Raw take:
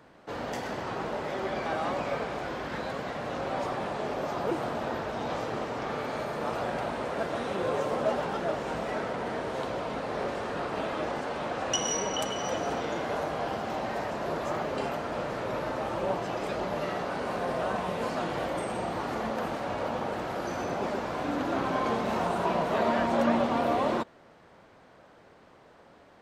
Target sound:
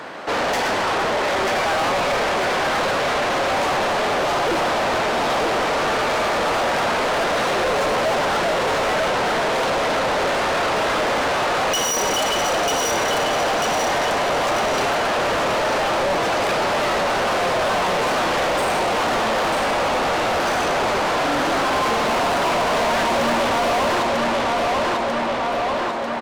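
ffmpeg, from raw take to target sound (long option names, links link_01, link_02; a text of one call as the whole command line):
ffmpeg -i in.wav -filter_complex "[0:a]aecho=1:1:943|1886|2829|3772|4715|5658:0.501|0.231|0.106|0.0488|0.0224|0.0103,asplit=2[link_01][link_02];[link_02]highpass=frequency=720:poles=1,volume=33dB,asoftclip=type=tanh:threshold=-12.5dB[link_03];[link_01][link_03]amix=inputs=2:normalize=0,lowpass=frequency=6100:poles=1,volume=-6dB,volume=-1dB" out.wav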